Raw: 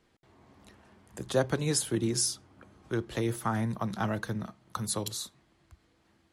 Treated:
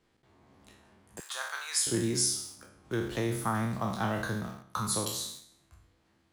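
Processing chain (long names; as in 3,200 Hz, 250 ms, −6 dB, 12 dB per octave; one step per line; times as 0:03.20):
peak hold with a decay on every bin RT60 0.70 s
in parallel at −8.5 dB: bit reduction 7 bits
0:01.20–0:01.87: on the sum: Chebyshev high-pass filter 1,100 Hz, order 3
level −4.5 dB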